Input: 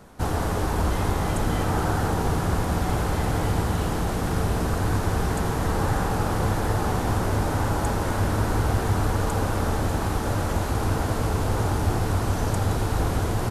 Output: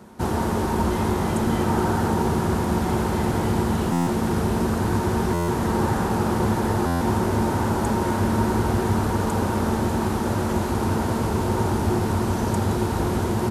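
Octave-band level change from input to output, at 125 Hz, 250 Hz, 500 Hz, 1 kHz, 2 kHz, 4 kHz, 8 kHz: 0.0, +6.0, +3.5, +2.5, 0.0, 0.0, 0.0 decibels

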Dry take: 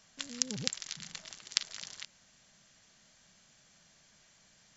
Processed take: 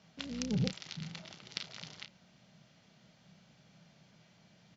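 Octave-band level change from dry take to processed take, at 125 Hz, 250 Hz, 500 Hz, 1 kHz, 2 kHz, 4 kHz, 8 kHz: +11.0 dB, +8.5 dB, +5.0 dB, −0.5 dB, −3.0 dB, −6.5 dB, can't be measured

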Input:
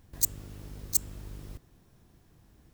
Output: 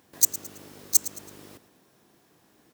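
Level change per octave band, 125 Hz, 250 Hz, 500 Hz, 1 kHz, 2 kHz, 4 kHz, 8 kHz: −10.5, +0.5, +4.5, +5.5, +5.5, +6.5, +7.5 decibels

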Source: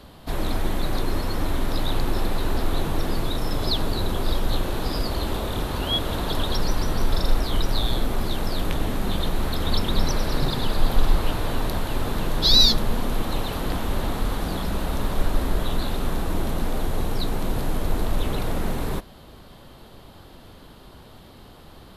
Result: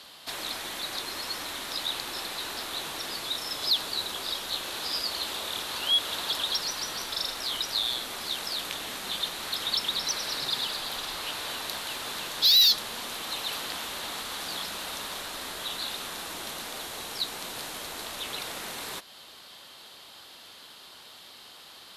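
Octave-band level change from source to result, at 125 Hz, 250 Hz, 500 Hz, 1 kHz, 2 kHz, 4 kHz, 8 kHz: −26.0, −18.0, −12.5, −6.5, −1.0, +0.5, +2.5 decibels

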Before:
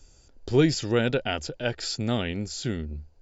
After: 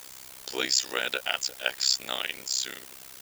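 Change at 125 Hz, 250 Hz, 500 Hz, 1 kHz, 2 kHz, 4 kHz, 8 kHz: below −25 dB, −19.0 dB, −11.0 dB, −1.5 dB, +2.0 dB, +6.0 dB, can't be measured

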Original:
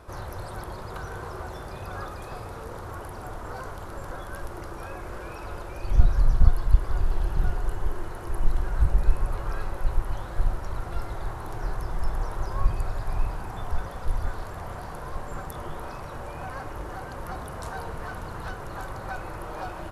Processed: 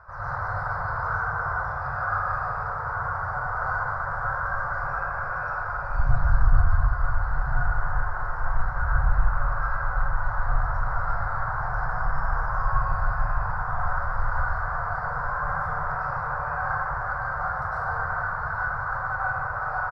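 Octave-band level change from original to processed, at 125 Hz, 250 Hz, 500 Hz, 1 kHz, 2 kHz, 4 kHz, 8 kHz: +1.5 dB, −4.5 dB, +0.5 dB, +10.5 dB, +14.0 dB, below −10 dB, can't be measured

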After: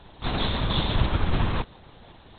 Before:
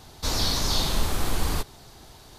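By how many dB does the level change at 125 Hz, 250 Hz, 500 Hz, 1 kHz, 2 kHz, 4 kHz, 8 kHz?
+5.0 dB, +4.0 dB, +2.0 dB, +2.0 dB, +2.0 dB, −3.0 dB, below −40 dB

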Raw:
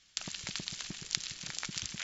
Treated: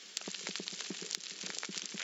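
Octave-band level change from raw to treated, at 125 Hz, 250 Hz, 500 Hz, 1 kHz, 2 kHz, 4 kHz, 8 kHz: −7.0 dB, +0.5 dB, +6.5 dB, −0.5 dB, −1.5 dB, −2.0 dB, can't be measured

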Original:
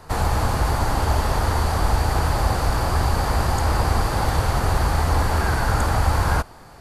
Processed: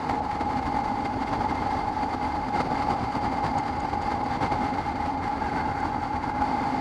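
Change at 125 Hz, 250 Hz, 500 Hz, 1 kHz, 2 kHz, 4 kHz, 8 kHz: −14.0 dB, 0.0 dB, −6.5 dB, −0.5 dB, −6.5 dB, −10.5 dB, below −15 dB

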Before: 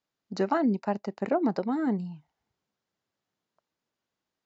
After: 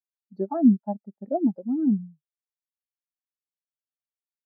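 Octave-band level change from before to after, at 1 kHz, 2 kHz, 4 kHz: −4.0 dB, below −20 dB, can't be measured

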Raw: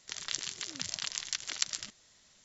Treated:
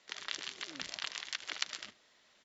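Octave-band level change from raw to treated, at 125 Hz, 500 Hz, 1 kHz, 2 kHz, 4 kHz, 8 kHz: −10.0 dB, +1.0 dB, +1.5 dB, +1.0 dB, −3.5 dB, can't be measured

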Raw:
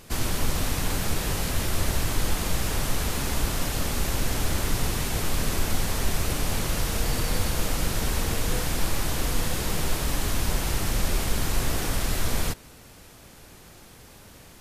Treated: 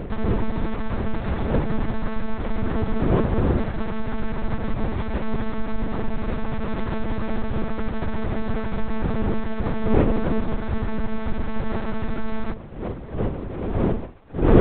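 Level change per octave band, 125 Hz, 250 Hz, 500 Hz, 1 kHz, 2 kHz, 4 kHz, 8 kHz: +3.0 dB, +8.5 dB, +7.5 dB, +2.0 dB, −3.0 dB, −13.5 dB, below −40 dB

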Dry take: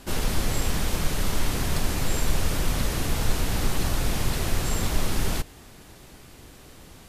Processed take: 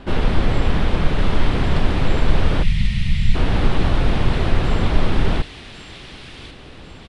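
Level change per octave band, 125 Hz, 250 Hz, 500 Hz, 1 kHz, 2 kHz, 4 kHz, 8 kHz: +8.5, +8.0, +7.5, +6.5, +5.5, +2.5, −13.0 decibels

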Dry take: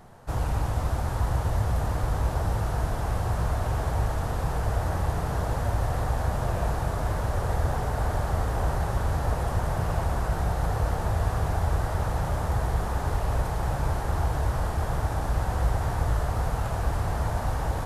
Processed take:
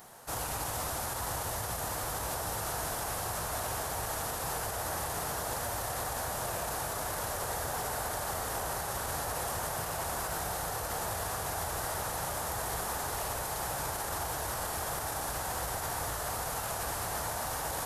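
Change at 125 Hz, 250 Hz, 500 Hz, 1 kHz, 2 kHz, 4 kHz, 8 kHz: −16.5, −10.5, −5.0, −3.5, −1.0, +4.0, +9.5 decibels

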